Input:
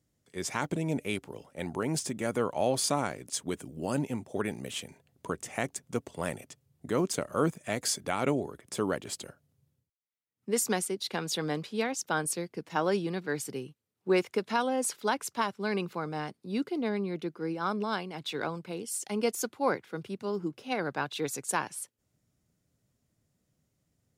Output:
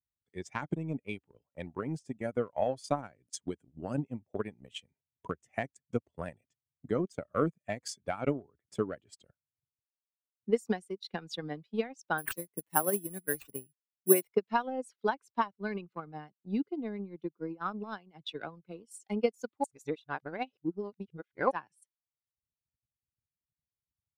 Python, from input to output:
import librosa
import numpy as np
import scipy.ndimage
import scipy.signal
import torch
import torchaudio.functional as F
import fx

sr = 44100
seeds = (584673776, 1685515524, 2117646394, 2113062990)

y = fx.resample_bad(x, sr, factor=4, down='none', up='zero_stuff', at=(12.18, 14.33))
y = fx.edit(y, sr, fx.reverse_span(start_s=19.64, length_s=1.87), tone=tone)
y = fx.bin_expand(y, sr, power=1.5)
y = fx.high_shelf(y, sr, hz=3300.0, db=-10.0)
y = fx.transient(y, sr, attack_db=9, sustain_db=-9)
y = y * 10.0 ** (-3.5 / 20.0)